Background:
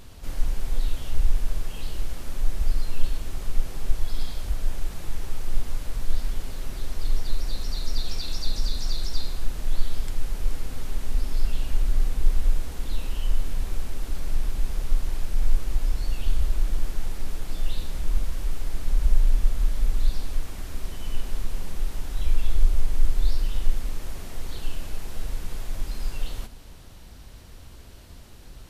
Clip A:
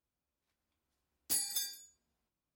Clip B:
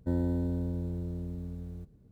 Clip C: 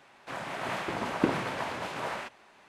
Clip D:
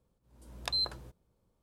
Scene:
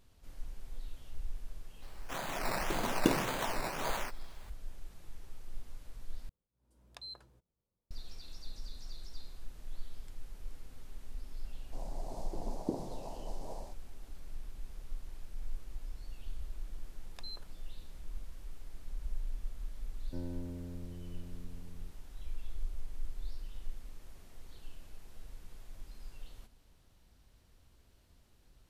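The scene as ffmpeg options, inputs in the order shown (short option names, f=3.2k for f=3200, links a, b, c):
-filter_complex "[3:a]asplit=2[a][b];[4:a]asplit=2[c][d];[0:a]volume=-19dB[e];[a]acrusher=samples=11:mix=1:aa=0.000001:lfo=1:lforange=6.6:lforate=1.8[f];[b]asuperstop=centerf=2000:order=8:qfactor=0.53[g];[e]asplit=2[h][i];[h]atrim=end=6.294[j];[c]atrim=end=1.62,asetpts=PTS-STARTPTS,volume=-15.5dB[k];[i]atrim=start=7.906[l];[f]atrim=end=2.68,asetpts=PTS-STARTPTS,volume=-2dB,afade=t=in:d=0.004:c=hsin,afade=t=out:st=2.676:d=0.004:c=hsin,adelay=1820[m];[g]atrim=end=2.68,asetpts=PTS-STARTPTS,volume=-9dB,afade=t=in:d=0.004:c=hsin,afade=t=out:st=2.676:d=0.004:c=hsin,adelay=11450[n];[d]atrim=end=1.62,asetpts=PTS-STARTPTS,volume=-16dB,afade=t=in:d=0.004:c=hsin,afade=t=out:st=1.616:d=0.004:c=hsin,adelay=16510[o];[2:a]atrim=end=2.11,asetpts=PTS-STARTPTS,volume=-12dB,afade=t=in:d=0.004:c=hsin,afade=t=out:st=2.106:d=0.004:c=hsin,adelay=20060[p];[j][k]acrossfade=d=0.004:c1=hsin:c2=hsin[q];[q][l]acrossfade=d=0.004:c1=hsin:c2=hsin[r];[r][m][n][o][p]amix=inputs=5:normalize=0"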